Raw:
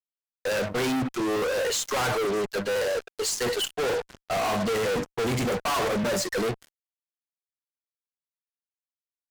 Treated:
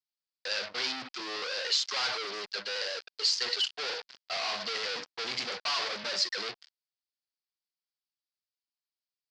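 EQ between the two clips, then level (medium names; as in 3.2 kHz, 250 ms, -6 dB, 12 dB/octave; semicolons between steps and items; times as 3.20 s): band-pass filter 2.9 kHz, Q 0.59; resonant low-pass 4.8 kHz, resonance Q 4.8; -4.0 dB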